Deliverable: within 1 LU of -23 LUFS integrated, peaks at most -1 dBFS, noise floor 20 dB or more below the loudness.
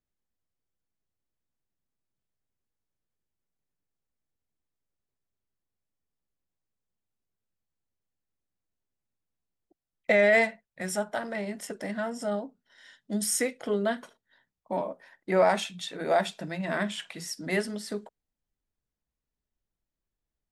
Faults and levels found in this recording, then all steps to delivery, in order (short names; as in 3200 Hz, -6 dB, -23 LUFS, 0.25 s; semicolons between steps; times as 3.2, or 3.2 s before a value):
loudness -29.0 LUFS; peak -11.0 dBFS; loudness target -23.0 LUFS
-> gain +6 dB